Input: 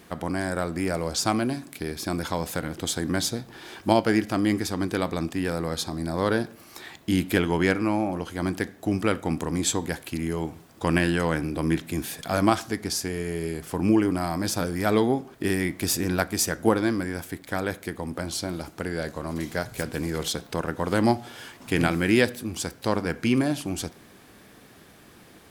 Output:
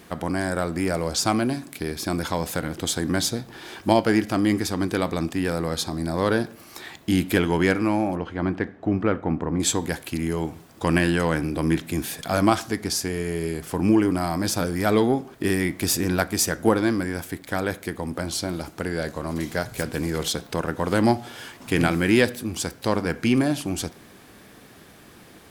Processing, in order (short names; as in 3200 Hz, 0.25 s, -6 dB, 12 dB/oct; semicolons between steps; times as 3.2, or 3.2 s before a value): 8.15–9.59 LPF 2600 Hz -> 1400 Hz 12 dB/oct; in parallel at -8.5 dB: soft clip -17.5 dBFS, distortion -12 dB